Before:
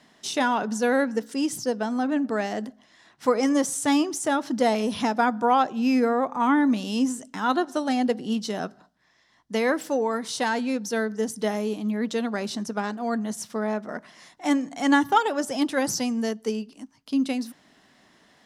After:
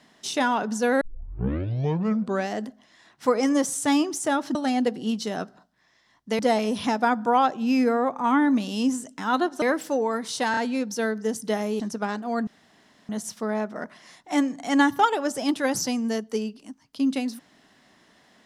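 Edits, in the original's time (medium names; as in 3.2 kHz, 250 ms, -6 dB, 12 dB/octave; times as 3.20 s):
1.01 s: tape start 1.49 s
7.78–9.62 s: move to 4.55 s
10.51 s: stutter 0.03 s, 3 plays
11.74–12.55 s: delete
13.22 s: insert room tone 0.62 s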